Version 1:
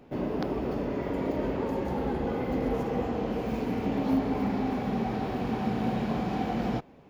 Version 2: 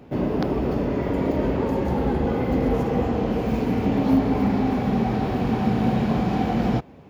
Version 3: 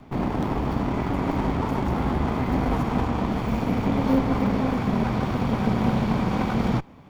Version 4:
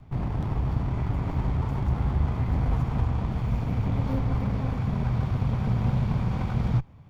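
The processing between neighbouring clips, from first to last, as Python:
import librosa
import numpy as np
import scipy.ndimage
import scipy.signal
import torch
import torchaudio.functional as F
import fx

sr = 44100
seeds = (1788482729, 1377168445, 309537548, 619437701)

y1 = scipy.signal.sosfilt(scipy.signal.butter(2, 63.0, 'highpass', fs=sr, output='sos'), x)
y1 = fx.low_shelf(y1, sr, hz=110.0, db=11.0)
y1 = y1 * 10.0 ** (5.5 / 20.0)
y2 = fx.lower_of_two(y1, sr, delay_ms=0.88)
y3 = fx.low_shelf_res(y2, sr, hz=170.0, db=11.0, q=1.5)
y3 = fx.doppler_dist(y3, sr, depth_ms=0.12)
y3 = y3 * 10.0 ** (-9.0 / 20.0)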